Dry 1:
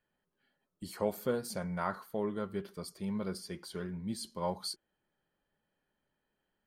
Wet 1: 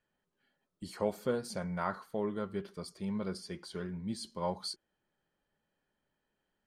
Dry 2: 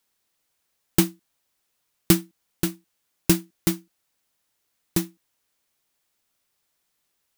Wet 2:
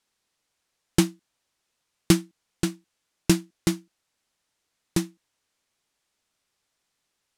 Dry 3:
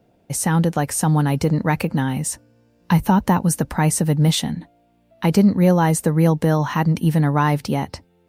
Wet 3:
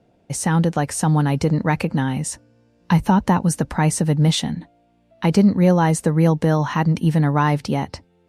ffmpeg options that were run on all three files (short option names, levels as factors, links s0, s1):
-af "lowpass=8700"